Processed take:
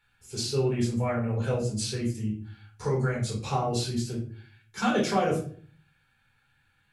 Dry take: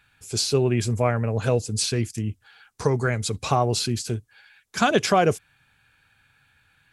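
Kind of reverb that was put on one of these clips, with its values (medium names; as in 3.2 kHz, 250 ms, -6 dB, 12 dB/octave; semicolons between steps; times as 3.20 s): simulated room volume 370 m³, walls furnished, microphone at 4.3 m; trim -13.5 dB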